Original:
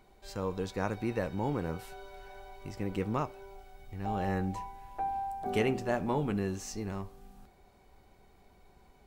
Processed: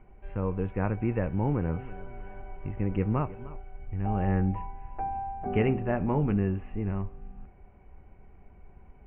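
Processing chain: steep low-pass 2.8 kHz 72 dB/octave; bass shelf 200 Hz +12 dB; 1.45–3.57 s: modulated delay 311 ms, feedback 51%, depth 202 cents, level -18 dB

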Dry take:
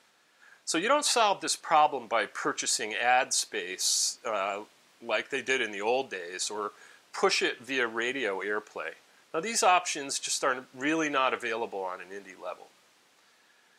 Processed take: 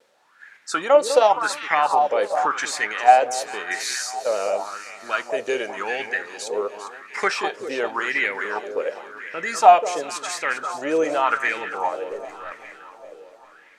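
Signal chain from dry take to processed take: 12.11–12.52 s: partial rectifier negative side -7 dB; band-stop 700 Hz, Q 23; in parallel at -2 dB: level held to a coarse grid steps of 12 dB; on the sum: vibrato 1 Hz 32 cents; on a send: echo whose repeats swap between lows and highs 200 ms, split 1.3 kHz, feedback 76%, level -9 dB; on the sum: sweeping bell 0.91 Hz 480–2100 Hz +18 dB; trim -5 dB

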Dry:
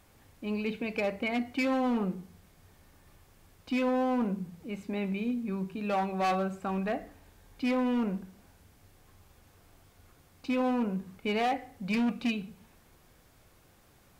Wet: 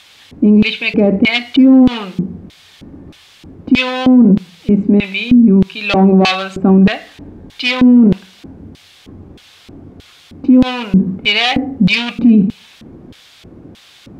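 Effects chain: LFO band-pass square 1.6 Hz 280–3500 Hz; bass shelf 190 Hz +11 dB; loudness maximiser +31.5 dB; trim -1 dB

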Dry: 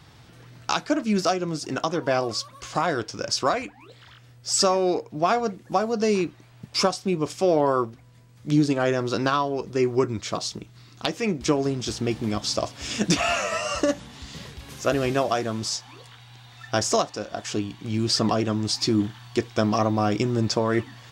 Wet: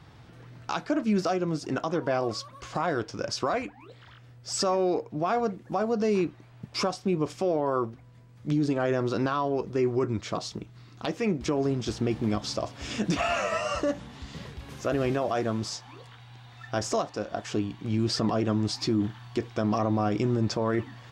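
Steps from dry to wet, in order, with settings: treble shelf 3.2 kHz -10.5 dB; peak limiter -17.5 dBFS, peak gain reduction 8 dB

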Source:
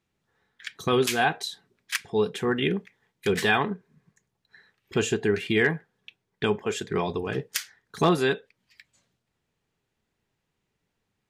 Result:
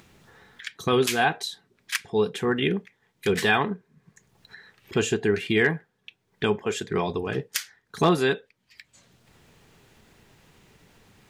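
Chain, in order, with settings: upward compressor, threshold -39 dBFS; trim +1 dB

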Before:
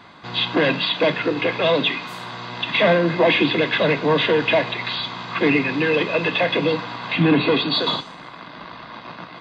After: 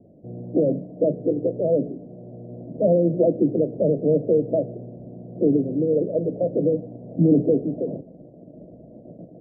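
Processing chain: steep low-pass 630 Hz 72 dB/octave

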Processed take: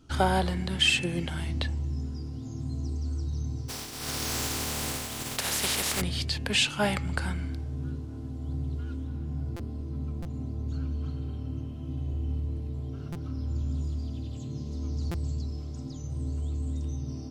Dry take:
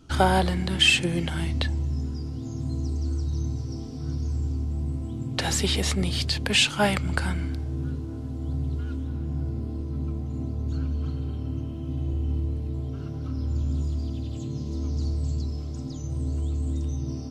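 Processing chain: 3.68–6.00 s: spectral contrast reduction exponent 0.28; de-hum 164.5 Hz, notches 18; buffer glitch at 9.56/10.22/13.12/15.11 s, samples 256, times 5; trim -4 dB

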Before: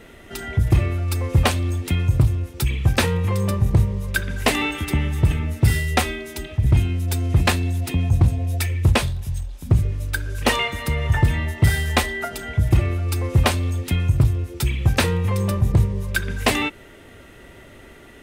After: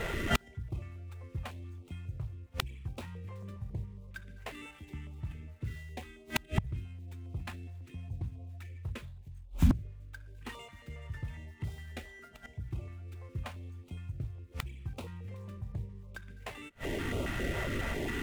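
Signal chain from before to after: median filter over 9 samples; inverted gate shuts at -24 dBFS, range -34 dB; step-sequenced notch 7.3 Hz 270–1700 Hz; trim +12 dB

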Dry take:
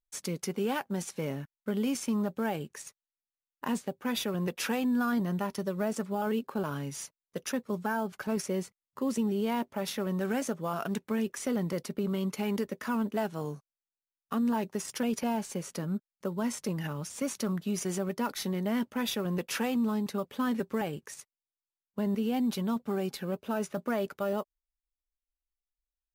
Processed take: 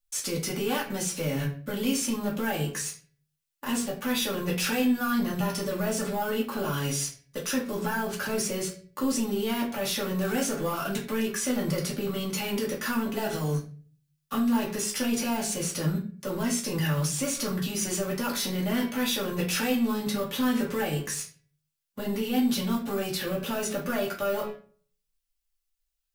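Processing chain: treble shelf 2.2 kHz +11 dB; de-hum 140.7 Hz, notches 16; waveshaping leveller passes 2; peak limiter -26.5 dBFS, peak gain reduction 14.5 dB; reverberation RT60 0.40 s, pre-delay 3 ms, DRR -4.5 dB

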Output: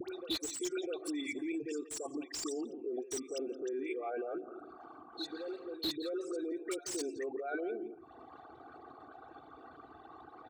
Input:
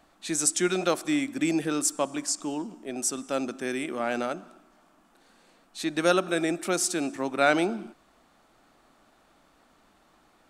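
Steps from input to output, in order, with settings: resonances exaggerated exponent 3; comb 2.6 ms, depth 78%; reverse echo 654 ms -22.5 dB; compression 2.5:1, threshold -47 dBFS, peak gain reduction 20 dB; high-pass 81 Hz 24 dB/octave; peak limiter -38 dBFS, peak gain reduction 12 dB; peaking EQ 4 kHz +11.5 dB 1.7 oct; phase dispersion highs, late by 88 ms, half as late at 1.2 kHz; speakerphone echo 170 ms, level -14 dB; slew-rate limiter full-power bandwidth 37 Hz; trim +6 dB

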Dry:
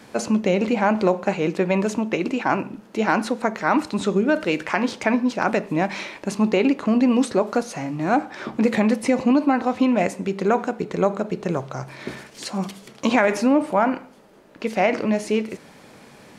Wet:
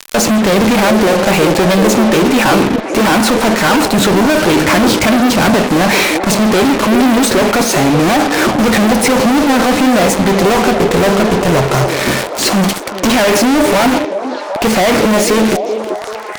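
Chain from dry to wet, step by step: 4.47–5.56 s: bass shelf 230 Hz +11 dB; fuzz box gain 43 dB, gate -38 dBFS; on a send: repeats whose band climbs or falls 384 ms, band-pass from 410 Hz, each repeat 0.7 oct, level -3.5 dB; on the sum: tape noise reduction on one side only encoder only; trim +4 dB

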